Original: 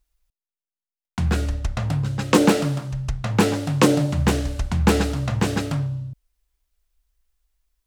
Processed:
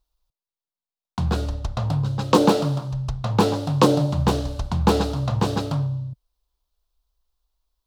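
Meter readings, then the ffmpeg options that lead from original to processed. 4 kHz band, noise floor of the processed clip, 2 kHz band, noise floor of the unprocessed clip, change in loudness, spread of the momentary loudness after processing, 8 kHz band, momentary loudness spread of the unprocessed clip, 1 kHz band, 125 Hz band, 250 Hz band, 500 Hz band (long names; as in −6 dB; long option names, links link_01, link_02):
−0.5 dB, below −85 dBFS, −7.0 dB, below −85 dBFS, −0.5 dB, 10 LU, −5.5 dB, 10 LU, +3.0 dB, 0.0 dB, −1.5 dB, +1.0 dB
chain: -af "equalizer=frequency=125:width_type=o:width=1:gain=5,equalizer=frequency=500:width_type=o:width=1:gain=4,equalizer=frequency=1000:width_type=o:width=1:gain=9,equalizer=frequency=2000:width_type=o:width=1:gain=-10,equalizer=frequency=4000:width_type=o:width=1:gain=8,equalizer=frequency=8000:width_type=o:width=1:gain=-4,volume=-4dB"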